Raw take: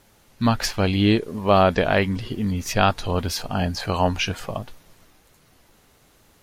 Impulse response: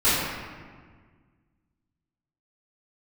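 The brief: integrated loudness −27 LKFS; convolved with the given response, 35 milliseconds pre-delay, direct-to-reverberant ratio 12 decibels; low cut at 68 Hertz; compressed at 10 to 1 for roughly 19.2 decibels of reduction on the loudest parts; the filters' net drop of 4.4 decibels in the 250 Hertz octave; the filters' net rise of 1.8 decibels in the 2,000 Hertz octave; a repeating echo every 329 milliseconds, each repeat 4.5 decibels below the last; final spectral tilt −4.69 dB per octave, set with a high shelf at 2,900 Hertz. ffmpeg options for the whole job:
-filter_complex "[0:a]highpass=68,equalizer=frequency=250:width_type=o:gain=-6,equalizer=frequency=2000:width_type=o:gain=4.5,highshelf=frequency=2900:gain=-5,acompressor=threshold=-32dB:ratio=10,aecho=1:1:329|658|987|1316|1645|1974|2303|2632|2961:0.596|0.357|0.214|0.129|0.0772|0.0463|0.0278|0.0167|0.01,asplit=2[link_01][link_02];[1:a]atrim=start_sample=2205,adelay=35[link_03];[link_02][link_03]afir=irnorm=-1:irlink=0,volume=-30.5dB[link_04];[link_01][link_04]amix=inputs=2:normalize=0,volume=8dB"

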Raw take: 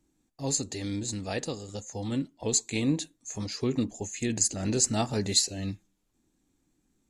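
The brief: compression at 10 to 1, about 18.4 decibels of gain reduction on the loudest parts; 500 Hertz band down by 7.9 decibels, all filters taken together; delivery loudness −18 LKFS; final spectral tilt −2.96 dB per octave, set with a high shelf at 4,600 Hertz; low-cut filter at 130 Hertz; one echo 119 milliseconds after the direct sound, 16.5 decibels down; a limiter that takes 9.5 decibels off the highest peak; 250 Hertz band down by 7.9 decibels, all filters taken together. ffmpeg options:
ffmpeg -i in.wav -af "highpass=130,equalizer=frequency=250:width_type=o:gain=-7,equalizer=frequency=500:width_type=o:gain=-8,highshelf=frequency=4600:gain=7.5,acompressor=threshold=-34dB:ratio=10,alimiter=level_in=6dB:limit=-24dB:level=0:latency=1,volume=-6dB,aecho=1:1:119:0.15,volume=23dB" out.wav

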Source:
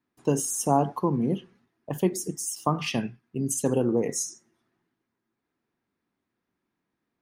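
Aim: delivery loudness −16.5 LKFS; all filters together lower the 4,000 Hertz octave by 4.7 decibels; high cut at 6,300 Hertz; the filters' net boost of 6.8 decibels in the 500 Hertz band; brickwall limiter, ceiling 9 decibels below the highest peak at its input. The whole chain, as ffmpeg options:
ffmpeg -i in.wav -af "lowpass=6300,equalizer=frequency=500:width_type=o:gain=8.5,equalizer=frequency=4000:width_type=o:gain=-6.5,volume=11.5dB,alimiter=limit=-3.5dB:level=0:latency=1" out.wav

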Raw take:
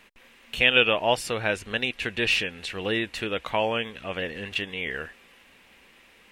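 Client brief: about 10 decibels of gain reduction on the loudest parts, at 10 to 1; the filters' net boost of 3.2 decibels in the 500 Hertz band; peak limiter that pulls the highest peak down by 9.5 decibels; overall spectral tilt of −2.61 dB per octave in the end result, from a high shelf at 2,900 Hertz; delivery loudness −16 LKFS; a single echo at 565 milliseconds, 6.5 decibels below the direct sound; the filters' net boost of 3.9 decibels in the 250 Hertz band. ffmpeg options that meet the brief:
ffmpeg -i in.wav -af "equalizer=frequency=250:width_type=o:gain=4,equalizer=frequency=500:width_type=o:gain=3,highshelf=frequency=2900:gain=-3.5,acompressor=threshold=-24dB:ratio=10,alimiter=limit=-20dB:level=0:latency=1,aecho=1:1:565:0.473,volume=15.5dB" out.wav

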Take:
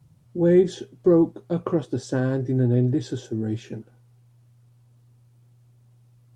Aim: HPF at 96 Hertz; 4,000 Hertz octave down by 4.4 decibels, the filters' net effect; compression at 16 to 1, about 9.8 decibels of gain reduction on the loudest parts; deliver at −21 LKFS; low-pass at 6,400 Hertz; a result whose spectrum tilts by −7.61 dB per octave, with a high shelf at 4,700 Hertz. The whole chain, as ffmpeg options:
ffmpeg -i in.wav -af "highpass=96,lowpass=6400,equalizer=frequency=4000:width_type=o:gain=-8.5,highshelf=frequency=4700:gain=7,acompressor=threshold=-22dB:ratio=16,volume=8.5dB" out.wav

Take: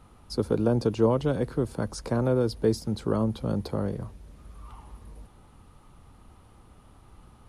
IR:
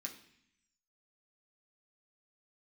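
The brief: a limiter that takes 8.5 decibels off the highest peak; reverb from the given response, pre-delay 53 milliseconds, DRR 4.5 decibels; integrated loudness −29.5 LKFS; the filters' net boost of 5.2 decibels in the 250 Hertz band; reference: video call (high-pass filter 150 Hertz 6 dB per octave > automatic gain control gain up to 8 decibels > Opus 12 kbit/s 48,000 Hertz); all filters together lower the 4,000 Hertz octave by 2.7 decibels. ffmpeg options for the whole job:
-filter_complex "[0:a]equalizer=frequency=250:width_type=o:gain=8,equalizer=frequency=4000:width_type=o:gain=-3.5,alimiter=limit=-14dB:level=0:latency=1,asplit=2[link_01][link_02];[1:a]atrim=start_sample=2205,adelay=53[link_03];[link_02][link_03]afir=irnorm=-1:irlink=0,volume=-1.5dB[link_04];[link_01][link_04]amix=inputs=2:normalize=0,highpass=frequency=150:poles=1,dynaudnorm=maxgain=8dB,volume=-3.5dB" -ar 48000 -c:a libopus -b:a 12k

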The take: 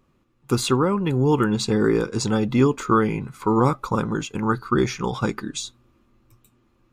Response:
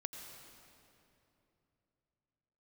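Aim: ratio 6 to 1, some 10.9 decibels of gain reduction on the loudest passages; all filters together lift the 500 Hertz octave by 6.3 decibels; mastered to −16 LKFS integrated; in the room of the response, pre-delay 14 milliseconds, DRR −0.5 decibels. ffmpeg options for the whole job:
-filter_complex "[0:a]equalizer=frequency=500:width_type=o:gain=8,acompressor=threshold=-22dB:ratio=6,asplit=2[link_01][link_02];[1:a]atrim=start_sample=2205,adelay=14[link_03];[link_02][link_03]afir=irnorm=-1:irlink=0,volume=2.5dB[link_04];[link_01][link_04]amix=inputs=2:normalize=0,volume=7.5dB"

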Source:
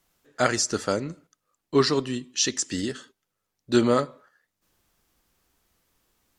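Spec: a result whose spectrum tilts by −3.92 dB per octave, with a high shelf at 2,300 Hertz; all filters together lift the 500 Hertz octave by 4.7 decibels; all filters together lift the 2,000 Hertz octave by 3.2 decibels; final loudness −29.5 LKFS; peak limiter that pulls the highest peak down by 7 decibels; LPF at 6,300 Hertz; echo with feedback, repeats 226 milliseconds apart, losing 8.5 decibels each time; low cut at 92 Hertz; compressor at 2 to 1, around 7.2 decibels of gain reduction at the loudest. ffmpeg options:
ffmpeg -i in.wav -af "highpass=92,lowpass=6300,equalizer=frequency=500:width_type=o:gain=6,equalizer=frequency=2000:width_type=o:gain=6.5,highshelf=frequency=2300:gain=-5.5,acompressor=threshold=-25dB:ratio=2,alimiter=limit=-18.5dB:level=0:latency=1,aecho=1:1:226|452|678|904:0.376|0.143|0.0543|0.0206,volume=1.5dB" out.wav

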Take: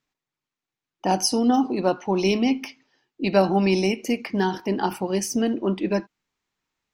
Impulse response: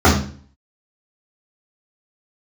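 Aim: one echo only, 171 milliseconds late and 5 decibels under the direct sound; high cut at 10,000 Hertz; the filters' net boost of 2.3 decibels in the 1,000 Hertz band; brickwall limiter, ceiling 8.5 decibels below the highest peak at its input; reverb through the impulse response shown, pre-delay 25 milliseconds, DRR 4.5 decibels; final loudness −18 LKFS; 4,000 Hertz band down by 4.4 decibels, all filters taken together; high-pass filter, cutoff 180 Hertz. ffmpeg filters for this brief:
-filter_complex "[0:a]highpass=180,lowpass=10000,equalizer=frequency=1000:width_type=o:gain=3.5,equalizer=frequency=4000:width_type=o:gain=-7,alimiter=limit=-14.5dB:level=0:latency=1,aecho=1:1:171:0.562,asplit=2[link_01][link_02];[1:a]atrim=start_sample=2205,adelay=25[link_03];[link_02][link_03]afir=irnorm=-1:irlink=0,volume=-31.5dB[link_04];[link_01][link_04]amix=inputs=2:normalize=0,volume=1.5dB"

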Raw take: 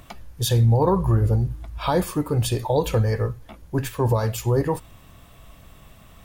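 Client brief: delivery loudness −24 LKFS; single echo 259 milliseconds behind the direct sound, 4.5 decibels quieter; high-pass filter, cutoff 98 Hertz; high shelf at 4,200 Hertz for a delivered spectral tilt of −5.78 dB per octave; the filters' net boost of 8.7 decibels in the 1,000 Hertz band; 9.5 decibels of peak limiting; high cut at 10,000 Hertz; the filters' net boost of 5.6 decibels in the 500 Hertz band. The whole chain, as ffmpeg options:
ffmpeg -i in.wav -af "highpass=98,lowpass=10000,equalizer=frequency=500:width_type=o:gain=4.5,equalizer=frequency=1000:width_type=o:gain=8.5,highshelf=frequency=4200:gain=4.5,alimiter=limit=-11.5dB:level=0:latency=1,aecho=1:1:259:0.596,volume=-2.5dB" out.wav

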